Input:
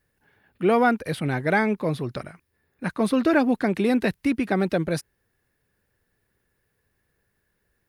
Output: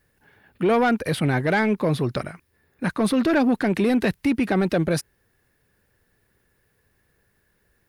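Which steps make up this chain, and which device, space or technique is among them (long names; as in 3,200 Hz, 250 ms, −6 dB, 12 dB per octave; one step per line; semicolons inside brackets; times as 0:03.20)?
soft clipper into limiter (soft clipping −15 dBFS, distortion −18 dB; brickwall limiter −20 dBFS, peak gain reduction 4.5 dB)
level +6 dB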